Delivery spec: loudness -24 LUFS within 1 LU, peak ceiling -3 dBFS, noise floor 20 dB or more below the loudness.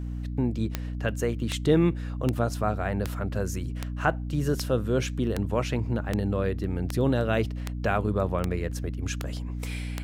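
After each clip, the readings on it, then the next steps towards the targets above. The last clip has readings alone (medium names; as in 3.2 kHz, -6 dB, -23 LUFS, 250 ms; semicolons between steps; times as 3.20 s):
clicks found 13; hum 60 Hz; highest harmonic 300 Hz; hum level -30 dBFS; loudness -28.0 LUFS; peak level -8.5 dBFS; loudness target -24.0 LUFS
-> de-click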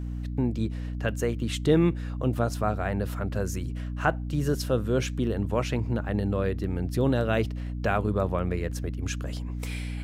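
clicks found 0; hum 60 Hz; highest harmonic 300 Hz; hum level -30 dBFS
-> de-hum 60 Hz, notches 5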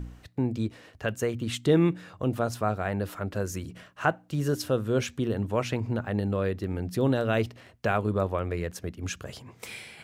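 hum not found; loudness -29.0 LUFS; peak level -8.5 dBFS; loudness target -24.0 LUFS
-> trim +5 dB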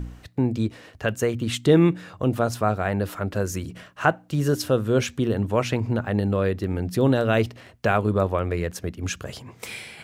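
loudness -24.0 LUFS; peak level -3.5 dBFS; noise floor -51 dBFS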